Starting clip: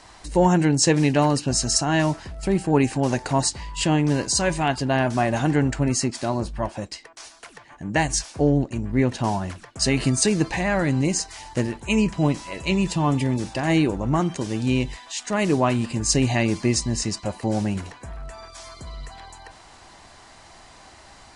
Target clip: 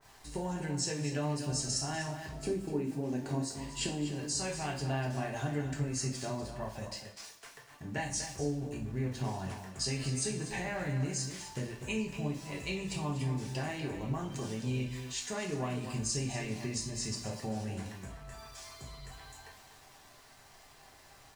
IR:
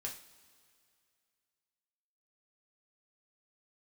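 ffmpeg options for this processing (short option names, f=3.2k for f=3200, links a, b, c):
-filter_complex "[0:a]asettb=1/sr,asplit=3[a][b][c];[a]atrim=end=2.324[d];[b]atrim=start=2.32:end=4.05,asetpts=PTS-STARTPTS,afade=t=in:d=0.004:c=qsin,afade=t=out:st=1.726:d=0.004:c=qsin,equalizer=f=300:t=o:w=1.5:g=15[e];[c]atrim=start=4.046[f];[d][e]acrossfade=d=0.004:c1=hsin:c2=qsin[g];[g][f]acrossfade=d=0.004:c1=qsin:c2=hsin,acompressor=threshold=-24dB:ratio=5,aeval=exprs='val(0)*gte(abs(val(0)),0.00473)':c=same,asplit=2[h][i];[i]adelay=244.9,volume=-9dB,highshelf=f=4k:g=-5.51[j];[h][j]amix=inputs=2:normalize=0[k];[1:a]atrim=start_sample=2205,afade=t=out:st=0.4:d=0.01,atrim=end_sample=18081[l];[k][l]afir=irnorm=-1:irlink=0,adynamicequalizer=threshold=0.00398:dfrequency=2400:dqfactor=0.7:tfrequency=2400:tqfactor=0.7:attack=5:release=100:ratio=0.375:range=1.5:mode=boostabove:tftype=highshelf,volume=-7.5dB"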